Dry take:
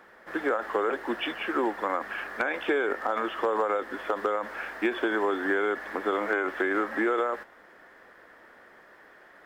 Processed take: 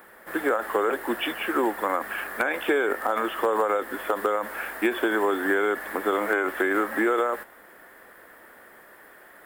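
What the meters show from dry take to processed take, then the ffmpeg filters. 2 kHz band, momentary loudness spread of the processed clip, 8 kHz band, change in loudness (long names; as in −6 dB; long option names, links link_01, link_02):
+3.0 dB, 5 LU, can't be measured, +3.0 dB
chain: -af "aexciter=amount=9.2:drive=1.4:freq=8200,volume=3dB"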